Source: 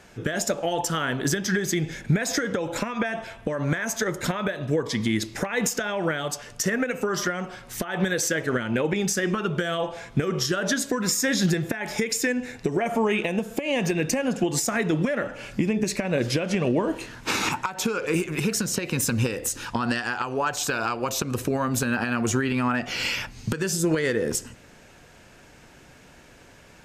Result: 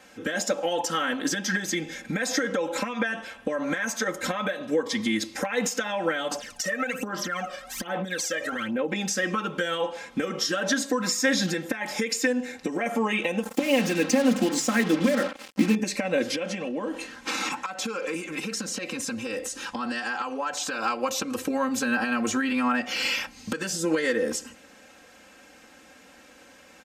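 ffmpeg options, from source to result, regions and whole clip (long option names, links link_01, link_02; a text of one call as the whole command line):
ffmpeg -i in.wav -filter_complex "[0:a]asettb=1/sr,asplit=3[link_01][link_02][link_03];[link_01]atrim=end=6.314[link_04];[link_02]atrim=start=6.31:end=8.92,asetpts=PTS-STARTPTS,afade=type=in:duration=0.004:curve=qsin,afade=type=out:start_time=2.606:duration=0.004:curve=qsin,aphaser=in_gain=1:out_gain=1:delay=1.7:decay=0.74:speed=1.2:type=sinusoidal,acompressor=threshold=-24dB:ratio=5:attack=3.2:release=140:knee=1:detection=peak[link_05];[link_03]atrim=start=8.916[link_06];[link_04][link_05]acrossfade=duration=0.004:curve1=hsin:curve2=qsin[link_07];[link_07][link_06]acrossfade=duration=0.004:curve1=qsin:curve2=hsin,asettb=1/sr,asplit=3[link_08][link_09][link_10];[link_08]atrim=end=13.434[link_11];[link_09]atrim=start=13.43:end=15.75,asetpts=PTS-STARTPTS,afade=type=in:duration=0.004:curve=qsin,afade=type=out:start_time=2.316:duration=0.004:curve=qsin,equalizer=frequency=230:width=1.3:gain=7,bandreject=frequency=50:width_type=h:width=6,bandreject=frequency=100:width_type=h:width=6,bandreject=frequency=150:width_type=h:width=6,bandreject=frequency=200:width_type=h:width=6,bandreject=frequency=250:width_type=h:width=6,bandreject=frequency=300:width_type=h:width=6,acrusher=bits=4:mix=0:aa=0.5[link_12];[link_10]atrim=start=15.746[link_13];[link_11][link_12]acrossfade=duration=0.004:curve1=hsin:curve2=qsin[link_14];[link_14][link_13]acrossfade=duration=0.004:curve1=qsin:curve2=hsin,asettb=1/sr,asplit=3[link_15][link_16][link_17];[link_15]atrim=end=16.354[link_18];[link_16]atrim=start=16.35:end=20.82,asetpts=PTS-STARTPTS,afade=type=in:duration=0.004:curve=qsin,afade=type=out:start_time=4.466:duration=0.004:curve=qsin,lowpass=11000,acompressor=threshold=-25dB:ratio=5:attack=3.2:release=140:knee=1:detection=peak[link_19];[link_17]atrim=start=20.816[link_20];[link_18][link_19]acrossfade=duration=0.004:curve1=hsin:curve2=qsin[link_21];[link_21][link_20]acrossfade=duration=0.004:curve1=qsin:curve2=hsin,acrossover=split=7100[link_22][link_23];[link_23]acompressor=threshold=-39dB:ratio=4:attack=1:release=60[link_24];[link_22][link_24]amix=inputs=2:normalize=0,highpass=frequency=280:poles=1,aecho=1:1:3.8:0.94,volume=-2dB" out.wav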